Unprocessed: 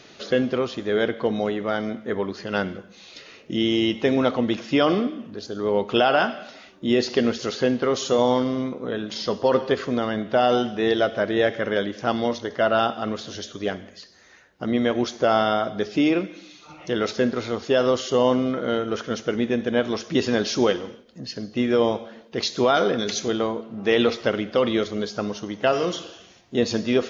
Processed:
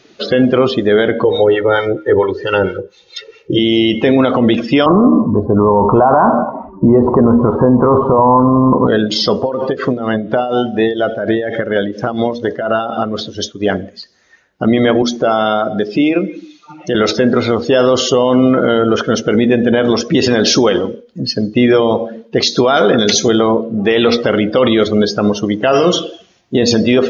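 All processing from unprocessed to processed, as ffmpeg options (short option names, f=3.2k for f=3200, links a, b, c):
-filter_complex "[0:a]asettb=1/sr,asplit=3[a][b][c];[a]atrim=end=1.244[d];[b]atrim=start=1.24:end=3.59,asetpts=PTS-STARTPTS,afade=t=in:d=0.004:c=qsin,afade=t=out:st=2.346:d=0.004:c=qsin,acrossover=split=710[e][f];[e]aeval=exprs='val(0)*(1-0.7/2+0.7/2*cos(2*PI*4.4*n/s))':c=same[g];[f]aeval=exprs='val(0)*(1-0.7/2-0.7/2*cos(2*PI*4.4*n/s))':c=same[h];[g][h]amix=inputs=2:normalize=0,aecho=1:1:2.2:0.99,atrim=end_sample=103635[i];[c]atrim=start=3.586[j];[d][i]acrossfade=d=0.004:c1=hsin:c2=qsin[k];[k][j]acrossfade=d=0.004:c1=qsin:c2=hsin,asettb=1/sr,asplit=3[l][m][n];[l]atrim=end=4.864[o];[m]atrim=start=4.86:end=8.87,asetpts=PTS-STARTPTS,afade=t=in:d=0.004:c=qsin,afade=t=out:st=4.006:d=0.004:c=qsin,lowpass=f=1k:t=q:w=9.7,aemphasis=mode=reproduction:type=riaa[p];[n]atrim=start=8.866[q];[o][p]acrossfade=d=0.004:c1=hsin:c2=qsin[r];[r][q]acrossfade=d=0.004:c1=qsin:c2=hsin,asettb=1/sr,asplit=3[s][t][u];[s]atrim=end=9.404[v];[t]atrim=start=9.4:end=13.7,asetpts=PTS-STARTPTS,afade=t=in:d=0.004:c=qsin,afade=t=out:st=4.296:d=0.004:c=qsin,acompressor=threshold=-23dB:ratio=16:attack=3.2:release=140:knee=1:detection=peak,tremolo=f=4.2:d=0.59[w];[u]atrim=start=13.696[x];[v][w]acrossfade=d=0.004:c1=hsin:c2=qsin[y];[y][x]acrossfade=d=0.004:c1=qsin:c2=hsin,asettb=1/sr,asplit=3[z][aa][ab];[z]atrim=end=15.024[ac];[aa]atrim=start=15.02:end=16.95,asetpts=PTS-STARTPTS,afade=t=in:d=0.004:c=qsin,afade=t=out:st=1.926:d=0.004:c=qsin,highpass=130,equalizer=f=660:w=0.36:g=-2,acompressor=threshold=-30dB:ratio=2:attack=3.2:release=140:knee=1:detection=peak[ad];[ab]atrim=start=16.946[ae];[ac][ad]acrossfade=d=0.004:c1=hsin:c2=qsin[af];[af][ae]acrossfade=d=0.004:c1=qsin:c2=hsin,bandreject=f=79.79:t=h:w=4,bandreject=f=159.58:t=h:w=4,bandreject=f=239.37:t=h:w=4,bandreject=f=319.16:t=h:w=4,bandreject=f=398.95:t=h:w=4,bandreject=f=478.74:t=h:w=4,bandreject=f=558.53:t=h:w=4,afftdn=nr=18:nf=-37,alimiter=level_in=17.5dB:limit=-1dB:release=50:level=0:latency=1,volume=-1dB"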